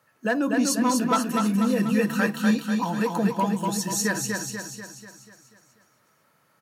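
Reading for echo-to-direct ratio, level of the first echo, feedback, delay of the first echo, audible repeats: -2.5 dB, -4.0 dB, 52%, 0.244 s, 6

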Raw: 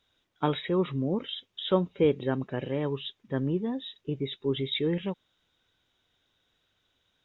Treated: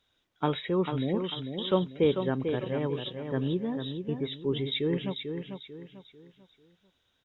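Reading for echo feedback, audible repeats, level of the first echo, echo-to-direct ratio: 35%, 4, -7.0 dB, -6.5 dB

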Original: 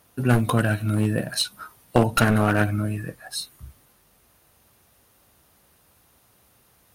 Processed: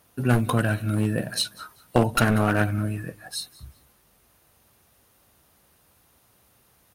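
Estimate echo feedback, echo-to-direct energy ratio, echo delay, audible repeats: 24%, -21.5 dB, 0.193 s, 2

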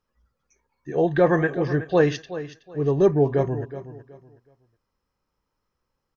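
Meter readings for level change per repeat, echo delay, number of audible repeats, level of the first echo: -11.5 dB, 0.372 s, 2, -13.5 dB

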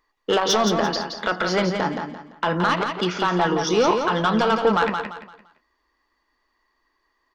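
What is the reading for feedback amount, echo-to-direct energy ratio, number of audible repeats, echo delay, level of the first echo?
32%, -5.5 dB, 3, 0.171 s, -6.0 dB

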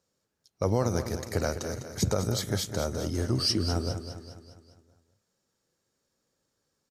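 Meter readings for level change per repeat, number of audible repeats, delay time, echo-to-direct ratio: -6.0 dB, 5, 0.203 s, -8.5 dB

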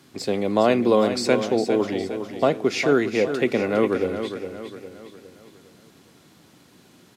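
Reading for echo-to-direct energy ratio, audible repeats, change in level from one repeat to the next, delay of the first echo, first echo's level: -8.0 dB, 4, -7.0 dB, 0.408 s, -9.0 dB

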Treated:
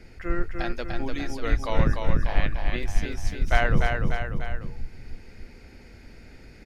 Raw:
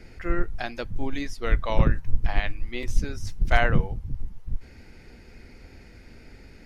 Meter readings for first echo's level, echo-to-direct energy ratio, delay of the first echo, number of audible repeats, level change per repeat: -4.0 dB, -2.5 dB, 0.296 s, 3, -5.0 dB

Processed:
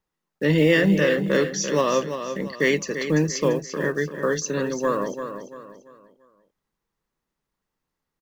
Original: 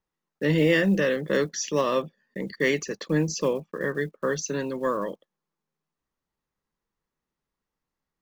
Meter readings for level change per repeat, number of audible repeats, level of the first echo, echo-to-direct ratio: -9.0 dB, 3, -9.0 dB, -8.5 dB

